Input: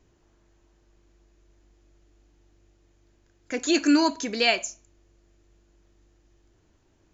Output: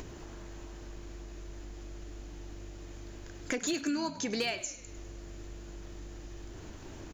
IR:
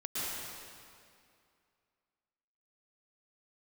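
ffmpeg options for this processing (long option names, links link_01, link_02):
-filter_complex "[0:a]acompressor=threshold=-36dB:ratio=12,volume=30.5dB,asoftclip=hard,volume=-30.5dB,acompressor=mode=upward:threshold=-40dB:ratio=2.5,asplit=2[link_01][link_02];[link_02]asplit=5[link_03][link_04][link_05][link_06][link_07];[link_03]adelay=101,afreqshift=-61,volume=-16dB[link_08];[link_04]adelay=202,afreqshift=-122,volume=-20.9dB[link_09];[link_05]adelay=303,afreqshift=-183,volume=-25.8dB[link_10];[link_06]adelay=404,afreqshift=-244,volume=-30.6dB[link_11];[link_07]adelay=505,afreqshift=-305,volume=-35.5dB[link_12];[link_08][link_09][link_10][link_11][link_12]amix=inputs=5:normalize=0[link_13];[link_01][link_13]amix=inputs=2:normalize=0,volume=6.5dB"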